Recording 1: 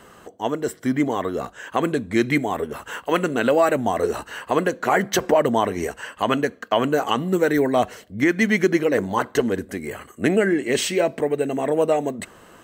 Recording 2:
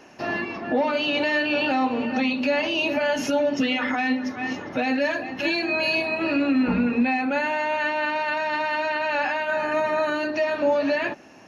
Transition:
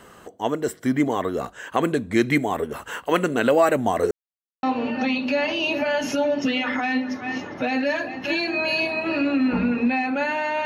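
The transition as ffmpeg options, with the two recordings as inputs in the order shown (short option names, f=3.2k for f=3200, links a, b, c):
-filter_complex "[0:a]apad=whole_dur=10.65,atrim=end=10.65,asplit=2[a][b];[a]atrim=end=4.11,asetpts=PTS-STARTPTS,afade=t=out:st=4.106:d=0.004:c=hsin[c];[b]atrim=start=4.11:end=4.63,asetpts=PTS-STARTPTS,volume=0[d];[1:a]atrim=start=1.78:end=7.8,asetpts=PTS-STARTPTS,afade=t=in:d=0.004:c=hsin[e];[c][d][e]concat=n=3:v=0:a=1"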